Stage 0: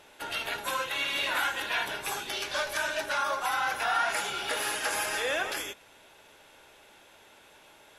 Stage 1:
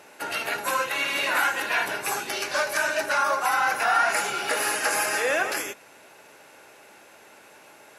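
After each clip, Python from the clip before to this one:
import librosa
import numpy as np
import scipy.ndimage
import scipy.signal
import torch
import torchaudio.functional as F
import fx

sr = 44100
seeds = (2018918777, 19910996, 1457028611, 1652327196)

y = scipy.signal.sosfilt(scipy.signal.butter(2, 140.0, 'highpass', fs=sr, output='sos'), x)
y = fx.peak_eq(y, sr, hz=3400.0, db=-11.5, octaves=0.33)
y = fx.notch(y, sr, hz=940.0, q=28.0)
y = y * librosa.db_to_amplitude(6.5)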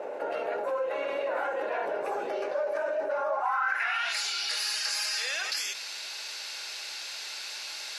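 y = fx.low_shelf(x, sr, hz=84.0, db=-9.5)
y = fx.filter_sweep_bandpass(y, sr, from_hz=530.0, to_hz=4500.0, start_s=3.22, end_s=4.21, q=3.8)
y = fx.env_flatten(y, sr, amount_pct=70)
y = y * librosa.db_to_amplitude(-1.5)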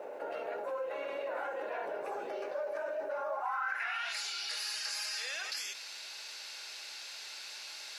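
y = fx.quant_dither(x, sr, seeds[0], bits=12, dither='triangular')
y = y * librosa.db_to_amplitude(-7.0)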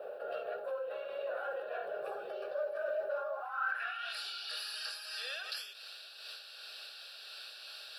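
y = fx.fixed_phaser(x, sr, hz=1400.0, stages=8)
y = fx.am_noise(y, sr, seeds[1], hz=5.7, depth_pct=60)
y = y * librosa.db_to_amplitude(3.0)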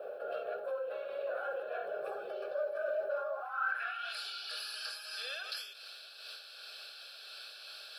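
y = fx.notch_comb(x, sr, f0_hz=930.0)
y = y * librosa.db_to_amplitude(1.0)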